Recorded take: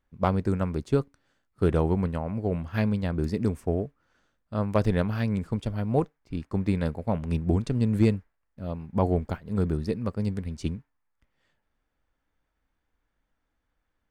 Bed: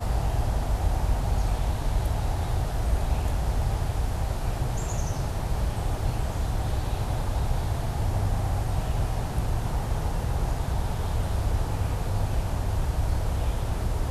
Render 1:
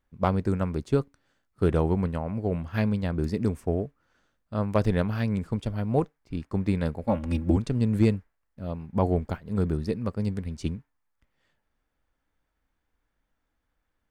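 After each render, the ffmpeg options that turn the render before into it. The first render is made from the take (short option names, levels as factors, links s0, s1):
-filter_complex "[0:a]asettb=1/sr,asplit=3[s0][s1][s2];[s0]atrim=end=7.034[s3];[s1]atrim=start=7.03:end=7.57,asetpts=PTS-STARTPTS,afade=t=in:d=0.004:c=qsin,afade=t=out:st=0.536:d=0.004:c=qsin,aecho=1:1:3.6:0.87,atrim=end_sample=23814[s4];[s2]atrim=start=7.566[s5];[s3][s4]acrossfade=d=0.004:c1=hsin:c2=qsin[s6];[s6][s5]acrossfade=d=0.004:c1=qsin:c2=hsin"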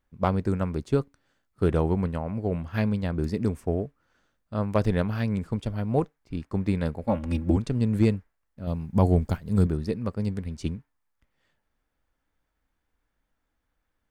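-filter_complex "[0:a]asettb=1/sr,asplit=3[s0][s1][s2];[s0]atrim=end=8.674[s3];[s1]atrim=start=8.67:end=9.67,asetpts=PTS-STARTPTS,afade=t=in:d=0.004:c=qsin,afade=t=out:st=0.996:d=0.004:c=qsin,bass=f=250:g=6,treble=f=4000:g=10[s4];[s2]atrim=start=9.666[s5];[s3][s4]acrossfade=d=0.004:c1=hsin:c2=qsin[s6];[s6][s5]acrossfade=d=0.004:c1=qsin:c2=hsin"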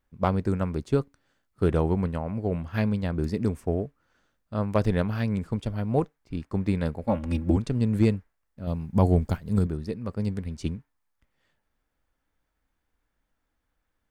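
-filter_complex "[0:a]asplit=3[s0][s1][s2];[s0]atrim=end=9.592[s3];[s1]atrim=start=9.588:end=10.092,asetpts=PTS-STARTPTS,volume=0.668[s4];[s2]atrim=start=10.088[s5];[s3][s4]acrossfade=d=0.004:c1=hsin:c2=hsin[s6];[s6][s5]acrossfade=d=0.004:c1=hsin:c2=hsin"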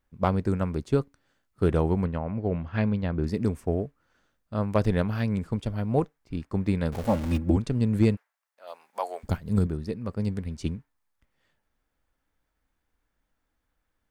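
-filter_complex "[0:a]asettb=1/sr,asplit=3[s0][s1][s2];[s0]atrim=end=2.054[s3];[s1]atrim=start=2.05:end=3.27,asetpts=PTS-STARTPTS,afade=t=in:d=0.004:c=qsin,afade=t=out:st=1.216:d=0.004:c=qsin,lowpass=3600[s4];[s2]atrim=start=3.266[s5];[s3][s4]acrossfade=d=0.004:c1=hsin:c2=qsin[s6];[s6][s5]acrossfade=d=0.004:c1=qsin:c2=hsin,asettb=1/sr,asplit=3[s7][s8][s9];[s7]atrim=end=6.924[s10];[s8]atrim=start=6.92:end=7.38,asetpts=PTS-STARTPTS,afade=t=in:d=0.004:c=qsin,afade=t=out:st=0.456:d=0.004:c=qsin,aeval=exprs='val(0)+0.5*0.0237*sgn(val(0))':c=same[s11];[s9]atrim=start=7.376[s12];[s10][s11]acrossfade=d=0.004:c1=hsin:c2=qsin[s13];[s13][s12]acrossfade=d=0.004:c1=qsin:c2=hsin,asplit=3[s14][s15][s16];[s14]afade=t=out:st=8.15:d=0.02[s17];[s15]highpass=f=640:w=0.5412,highpass=f=640:w=1.3066,afade=t=in:st=8.15:d=0.02,afade=t=out:st=9.23:d=0.02[s18];[s16]afade=t=in:st=9.23:d=0.02[s19];[s17][s18][s19]amix=inputs=3:normalize=0"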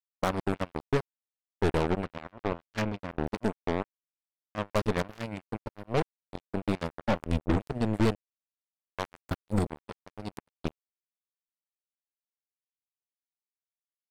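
-af "aeval=exprs='(tanh(6.31*val(0)+0.5)-tanh(0.5))/6.31':c=same,acrusher=bits=3:mix=0:aa=0.5"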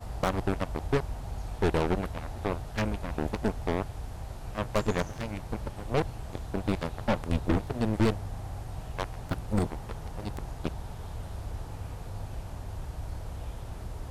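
-filter_complex "[1:a]volume=0.266[s0];[0:a][s0]amix=inputs=2:normalize=0"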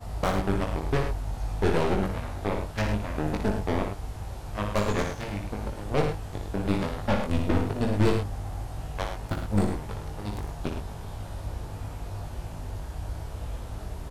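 -filter_complex "[0:a]asplit=2[s0][s1];[s1]adelay=20,volume=0.631[s2];[s0][s2]amix=inputs=2:normalize=0,aecho=1:1:58.31|105:0.501|0.398"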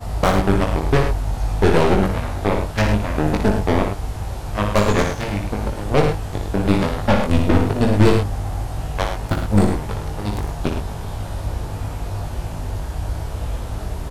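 -af "volume=2.99,alimiter=limit=0.708:level=0:latency=1"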